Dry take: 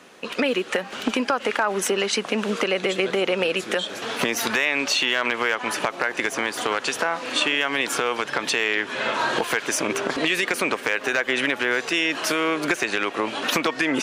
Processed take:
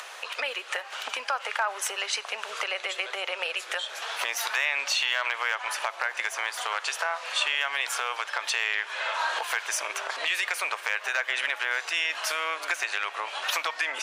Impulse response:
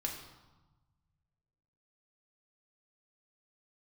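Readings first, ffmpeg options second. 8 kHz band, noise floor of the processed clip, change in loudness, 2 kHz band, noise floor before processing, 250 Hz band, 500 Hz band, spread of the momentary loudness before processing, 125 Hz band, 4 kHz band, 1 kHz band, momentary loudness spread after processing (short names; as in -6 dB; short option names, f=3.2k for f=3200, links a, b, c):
-4.0 dB, -43 dBFS, -5.0 dB, -4.0 dB, -38 dBFS, under -30 dB, -14.0 dB, 4 LU, under -40 dB, -4.0 dB, -4.5 dB, 6 LU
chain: -filter_complex "[0:a]highpass=f=680:w=0.5412,highpass=f=680:w=1.3066,acompressor=mode=upward:threshold=-26dB:ratio=2.5,asplit=2[a][b];[1:a]atrim=start_sample=2205[c];[b][c]afir=irnorm=-1:irlink=0,volume=-13.5dB[d];[a][d]amix=inputs=2:normalize=0,volume=-5.5dB"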